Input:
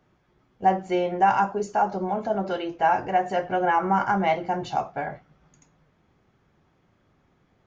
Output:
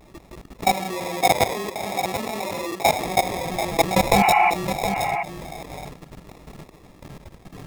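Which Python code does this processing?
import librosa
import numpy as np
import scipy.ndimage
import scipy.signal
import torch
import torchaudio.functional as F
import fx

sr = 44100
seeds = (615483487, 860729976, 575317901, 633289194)

y = fx.block_float(x, sr, bits=3)
y = fx.chorus_voices(y, sr, voices=6, hz=1.0, base_ms=19, depth_ms=3.6, mix_pct=70)
y = fx.level_steps(y, sr, step_db=22)
y = fx.dynamic_eq(y, sr, hz=1200.0, q=1.0, threshold_db=-39.0, ratio=4.0, max_db=7)
y = fx.sample_hold(y, sr, seeds[0], rate_hz=1500.0, jitter_pct=0)
y = fx.highpass(y, sr, hz=230.0, slope=6, at=(0.74, 3.05))
y = fx.spec_repair(y, sr, seeds[1], start_s=4.2, length_s=0.27, low_hz=680.0, high_hz=3000.0, source='before')
y = y + 10.0 ** (-15.5 / 20.0) * np.pad(y, (int(728 * sr / 1000.0), 0))[:len(y)]
y = fx.vibrato(y, sr, rate_hz=0.51, depth_cents=33.0)
y = fx.env_flatten(y, sr, amount_pct=50)
y = F.gain(torch.from_numpy(y), 2.5).numpy()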